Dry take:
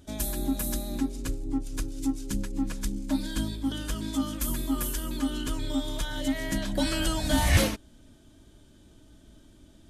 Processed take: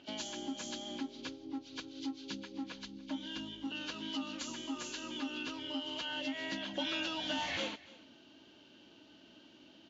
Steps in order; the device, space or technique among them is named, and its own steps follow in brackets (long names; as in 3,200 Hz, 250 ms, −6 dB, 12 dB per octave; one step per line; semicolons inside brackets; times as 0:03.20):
0:02.75–0:03.67: low-shelf EQ 140 Hz +9.5 dB
hearing aid with frequency lowering (hearing-aid frequency compression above 2,200 Hz 1.5 to 1; downward compressor 2.5 to 1, threshold −37 dBFS, peak gain reduction 14 dB; loudspeaker in its box 380–5,600 Hz, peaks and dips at 420 Hz −5 dB, 630 Hz −5 dB, 1,200 Hz −5 dB, 1,800 Hz −4 dB, 3,200 Hz +5 dB, 5,300 Hz −9 dB)
single-tap delay 290 ms −20.5 dB
level +4.5 dB